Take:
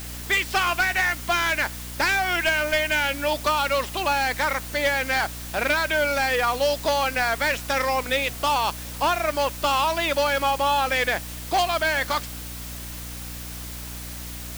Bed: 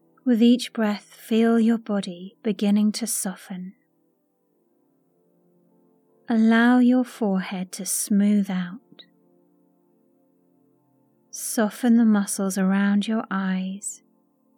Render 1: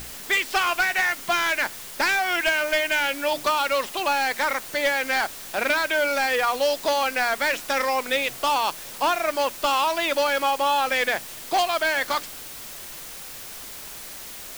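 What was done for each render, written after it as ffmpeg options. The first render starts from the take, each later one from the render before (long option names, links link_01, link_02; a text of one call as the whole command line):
ffmpeg -i in.wav -af "bandreject=frequency=60:width_type=h:width=6,bandreject=frequency=120:width_type=h:width=6,bandreject=frequency=180:width_type=h:width=6,bandreject=frequency=240:width_type=h:width=6,bandreject=frequency=300:width_type=h:width=6" out.wav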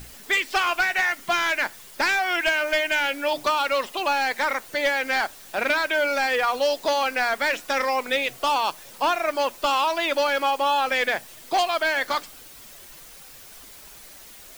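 ffmpeg -i in.wav -af "afftdn=noise_reduction=8:noise_floor=-39" out.wav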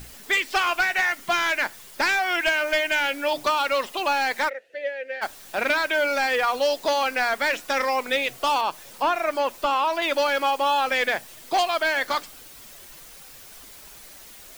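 ffmpeg -i in.wav -filter_complex "[0:a]asplit=3[link_01][link_02][link_03];[link_01]afade=type=out:start_time=4.48:duration=0.02[link_04];[link_02]asplit=3[link_05][link_06][link_07];[link_05]bandpass=frequency=530:width_type=q:width=8,volume=0dB[link_08];[link_06]bandpass=frequency=1840:width_type=q:width=8,volume=-6dB[link_09];[link_07]bandpass=frequency=2480:width_type=q:width=8,volume=-9dB[link_10];[link_08][link_09][link_10]amix=inputs=3:normalize=0,afade=type=in:start_time=4.48:duration=0.02,afade=type=out:start_time=5.21:duration=0.02[link_11];[link_03]afade=type=in:start_time=5.21:duration=0.02[link_12];[link_04][link_11][link_12]amix=inputs=3:normalize=0,asettb=1/sr,asplit=3[link_13][link_14][link_15];[link_13]atrim=end=8.614[link_16];[link_14]atrim=start=8.61:end=10.02,asetpts=PTS-STARTPTS,afade=type=in:duration=0.004:curve=qsin,afade=type=out:start_time=1.406:duration=0.004:curve=qsin,acrossover=split=2600[link_17][link_18];[link_18]acompressor=threshold=-37dB:ratio=4:attack=1:release=60[link_19];[link_17][link_19]amix=inputs=2:normalize=0[link_20];[link_15]atrim=start=10.016[link_21];[link_16][link_20]acrossfade=duration=0.004:curve1=hsin:curve2=qsin[link_22];[link_22][link_21]acrossfade=duration=0.004:curve1=qsin:curve2=hsin" out.wav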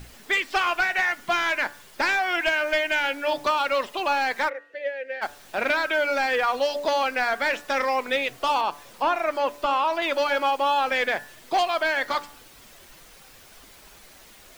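ffmpeg -i in.wav -af "highshelf=frequency=5400:gain=-8.5,bandreject=frequency=144.9:width_type=h:width=4,bandreject=frequency=289.8:width_type=h:width=4,bandreject=frequency=434.7:width_type=h:width=4,bandreject=frequency=579.6:width_type=h:width=4,bandreject=frequency=724.5:width_type=h:width=4,bandreject=frequency=869.4:width_type=h:width=4,bandreject=frequency=1014.3:width_type=h:width=4,bandreject=frequency=1159.2:width_type=h:width=4,bandreject=frequency=1304.1:width_type=h:width=4,bandreject=frequency=1449:width_type=h:width=4,bandreject=frequency=1593.9:width_type=h:width=4,bandreject=frequency=1738.8:width_type=h:width=4,bandreject=frequency=1883.7:width_type=h:width=4" out.wav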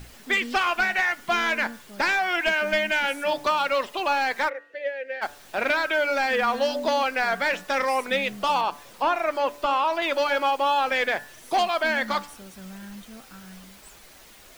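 ffmpeg -i in.wav -i bed.wav -filter_complex "[1:a]volume=-20.5dB[link_01];[0:a][link_01]amix=inputs=2:normalize=0" out.wav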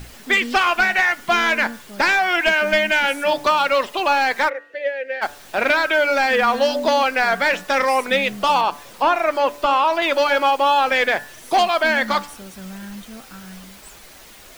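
ffmpeg -i in.wav -af "volume=6dB" out.wav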